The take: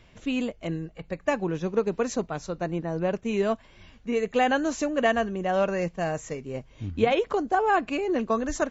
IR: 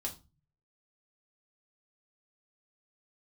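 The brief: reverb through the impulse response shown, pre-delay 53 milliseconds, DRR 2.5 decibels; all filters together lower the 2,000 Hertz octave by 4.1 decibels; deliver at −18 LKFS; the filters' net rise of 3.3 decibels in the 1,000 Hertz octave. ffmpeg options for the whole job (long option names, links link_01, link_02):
-filter_complex "[0:a]equalizer=frequency=1000:width_type=o:gain=6.5,equalizer=frequency=2000:width_type=o:gain=-8,asplit=2[link_01][link_02];[1:a]atrim=start_sample=2205,adelay=53[link_03];[link_02][link_03]afir=irnorm=-1:irlink=0,volume=-2.5dB[link_04];[link_01][link_04]amix=inputs=2:normalize=0,volume=5.5dB"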